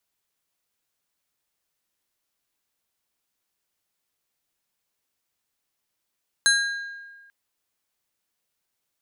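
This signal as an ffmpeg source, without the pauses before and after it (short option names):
-f lavfi -i "aevalsrc='0.15*pow(10,-3*t/1.46)*sin(2*PI*1620*t)+0.119*pow(10,-3*t/0.769)*sin(2*PI*4050*t)+0.0944*pow(10,-3*t/0.553)*sin(2*PI*6480*t)+0.075*pow(10,-3*t/0.473)*sin(2*PI*8100*t)+0.0596*pow(10,-3*t/0.394)*sin(2*PI*10530*t)':d=0.84:s=44100"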